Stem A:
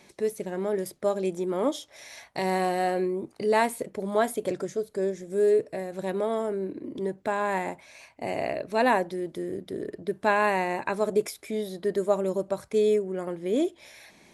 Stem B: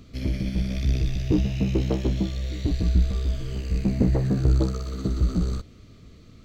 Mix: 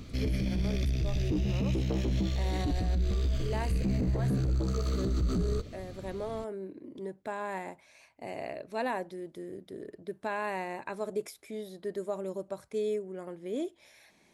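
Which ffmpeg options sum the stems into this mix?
ffmpeg -i stem1.wav -i stem2.wav -filter_complex "[0:a]volume=-9dB[link_01];[1:a]volume=3dB[link_02];[link_01][link_02]amix=inputs=2:normalize=0,alimiter=limit=-22.5dB:level=0:latency=1:release=53" out.wav

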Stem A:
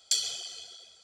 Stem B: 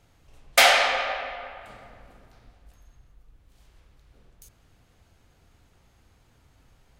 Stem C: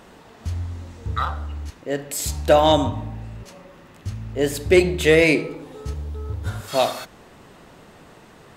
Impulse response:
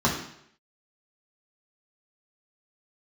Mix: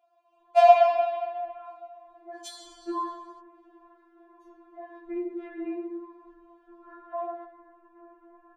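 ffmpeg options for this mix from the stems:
-filter_complex "[0:a]adelay=2350,volume=-11dB[link_01];[1:a]asplit=3[link_02][link_03][link_04];[link_02]bandpass=frequency=730:width_type=q:width=8,volume=0dB[link_05];[link_03]bandpass=frequency=1090:width_type=q:width=8,volume=-6dB[link_06];[link_04]bandpass=frequency=2440:width_type=q:width=8,volume=-9dB[link_07];[link_05][link_06][link_07]amix=inputs=3:normalize=0,volume=0dB,asplit=2[link_08][link_09];[link_09]volume=-9.5dB[link_10];[2:a]lowpass=frequency=1600:width=0.5412,lowpass=frequency=1600:width=1.3066,acompressor=threshold=-20dB:ratio=6,adelay=400,volume=-11.5dB,afade=type=in:start_time=2.04:duration=0.32:silence=0.281838,asplit=2[link_11][link_12];[link_12]volume=-13dB[link_13];[3:a]atrim=start_sample=2205[link_14];[link_10][link_13]amix=inputs=2:normalize=0[link_15];[link_15][link_14]afir=irnorm=-1:irlink=0[link_16];[link_01][link_08][link_11][link_16]amix=inputs=4:normalize=0,afftfilt=real='re*4*eq(mod(b,16),0)':imag='im*4*eq(mod(b,16),0)':win_size=2048:overlap=0.75"

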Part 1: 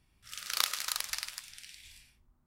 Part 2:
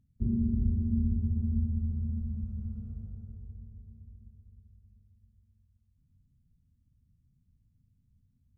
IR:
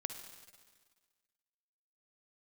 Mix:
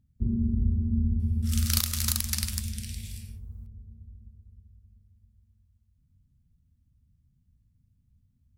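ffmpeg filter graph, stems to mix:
-filter_complex "[0:a]equalizer=frequency=450:width=0.76:gain=6.5,crystalizer=i=4:c=0,adelay=1200,volume=-4dB[link_01];[1:a]volume=0.5dB[link_02];[link_01][link_02]amix=inputs=2:normalize=0,equalizer=frequency=64:width_type=o:width=0.83:gain=4.5,alimiter=limit=-6dB:level=0:latency=1:release=269"

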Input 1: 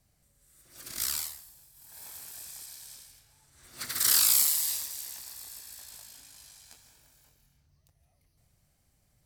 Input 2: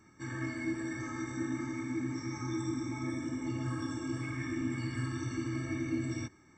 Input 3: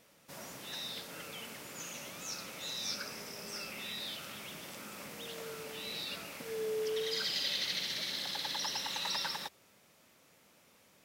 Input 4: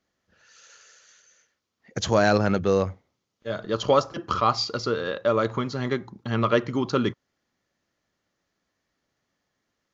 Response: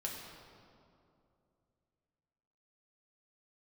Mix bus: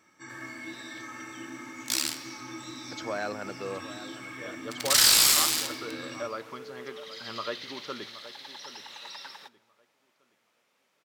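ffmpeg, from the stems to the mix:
-filter_complex "[0:a]acrusher=bits=3:mix=0:aa=0.5,equalizer=frequency=4700:width_type=o:width=2.6:gain=8,adelay=900,volume=-2.5dB,asplit=2[link_01][link_02];[link_02]volume=-6dB[link_03];[1:a]highshelf=frequency=4700:gain=8,volume=-8.5dB,asplit=2[link_04][link_05];[link_05]volume=-6.5dB[link_06];[2:a]volume=-12dB,asplit=2[link_07][link_08];[link_08]volume=-20.5dB[link_09];[3:a]adelay=950,volume=-17dB,asplit=2[link_10][link_11];[link_11]volume=-14dB[link_12];[4:a]atrim=start_sample=2205[link_13];[link_03][link_06][link_09]amix=inputs=3:normalize=0[link_14];[link_14][link_13]afir=irnorm=-1:irlink=0[link_15];[link_12]aecho=0:1:771|1542|2313|3084|3855:1|0.32|0.102|0.0328|0.0105[link_16];[link_01][link_04][link_07][link_10][link_15][link_16]amix=inputs=6:normalize=0,lowshelf=frequency=120:gain=-10,asplit=2[link_17][link_18];[link_18]highpass=frequency=720:poles=1,volume=12dB,asoftclip=type=tanh:threshold=-4dB[link_19];[link_17][link_19]amix=inputs=2:normalize=0,lowpass=frequency=3300:poles=1,volume=-6dB"

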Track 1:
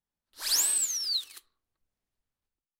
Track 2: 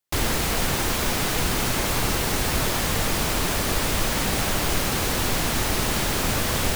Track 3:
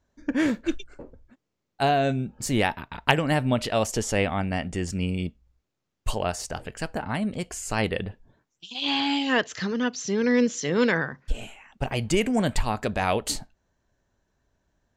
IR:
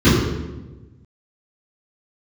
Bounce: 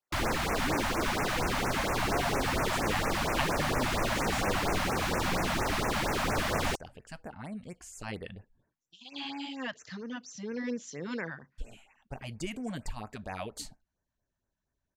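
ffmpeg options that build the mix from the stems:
-filter_complex "[1:a]asplit=2[link_01][link_02];[link_02]highpass=frequency=720:poles=1,volume=12dB,asoftclip=type=tanh:threshold=-9.5dB[link_03];[link_01][link_03]amix=inputs=2:normalize=0,lowpass=frequency=1200:poles=1,volume=-6dB,volume=-3.5dB[link_04];[2:a]adelay=300,volume=-13dB[link_05];[link_04][link_05]amix=inputs=2:normalize=0,afftfilt=real='re*(1-between(b*sr/1024,360*pow(4000/360,0.5+0.5*sin(2*PI*4.3*pts/sr))/1.41,360*pow(4000/360,0.5+0.5*sin(2*PI*4.3*pts/sr))*1.41))':imag='im*(1-between(b*sr/1024,360*pow(4000/360,0.5+0.5*sin(2*PI*4.3*pts/sr))/1.41,360*pow(4000/360,0.5+0.5*sin(2*PI*4.3*pts/sr))*1.41))':win_size=1024:overlap=0.75"

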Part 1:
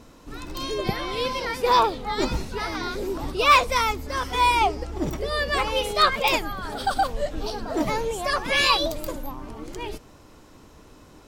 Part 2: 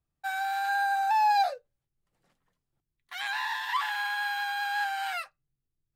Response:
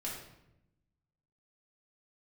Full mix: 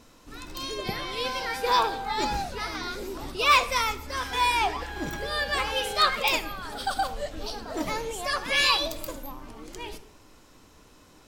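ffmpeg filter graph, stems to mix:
-filter_complex "[0:a]tiltshelf=frequency=1200:gain=-3.5,volume=-5.5dB,asplit=2[link_01][link_02];[link_02]volume=-9.5dB[link_03];[1:a]adelay=1000,volume=-8dB[link_04];[2:a]atrim=start_sample=2205[link_05];[link_03][link_05]afir=irnorm=-1:irlink=0[link_06];[link_01][link_04][link_06]amix=inputs=3:normalize=0"

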